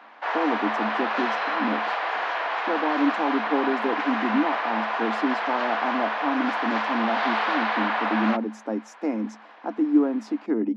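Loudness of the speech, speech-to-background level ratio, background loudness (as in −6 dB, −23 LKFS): −28.0 LKFS, −2.0 dB, −26.0 LKFS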